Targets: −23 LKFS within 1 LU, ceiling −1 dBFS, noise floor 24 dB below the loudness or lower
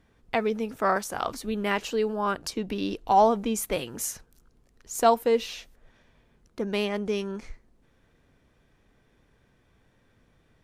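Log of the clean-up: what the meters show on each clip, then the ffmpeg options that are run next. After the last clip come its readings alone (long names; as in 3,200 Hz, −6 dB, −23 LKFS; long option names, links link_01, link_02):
integrated loudness −27.0 LKFS; sample peak −8.0 dBFS; target loudness −23.0 LKFS
→ -af "volume=4dB"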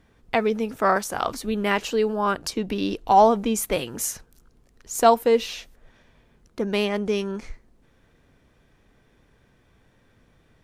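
integrated loudness −23.0 LKFS; sample peak −4.0 dBFS; background noise floor −61 dBFS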